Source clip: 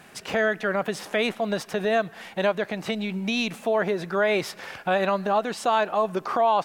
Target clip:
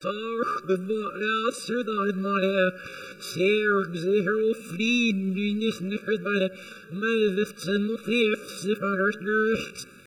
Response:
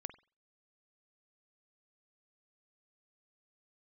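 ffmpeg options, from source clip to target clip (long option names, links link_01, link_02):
-filter_complex "[0:a]areverse,asplit=2[link_01][link_02];[1:a]atrim=start_sample=2205,asetrate=36603,aresample=44100[link_03];[link_02][link_03]afir=irnorm=-1:irlink=0,volume=-5dB[link_04];[link_01][link_04]amix=inputs=2:normalize=0,atempo=0.66,afftfilt=real='re*eq(mod(floor(b*sr/1024/570),2),0)':imag='im*eq(mod(floor(b*sr/1024/570),2),0)':win_size=1024:overlap=0.75"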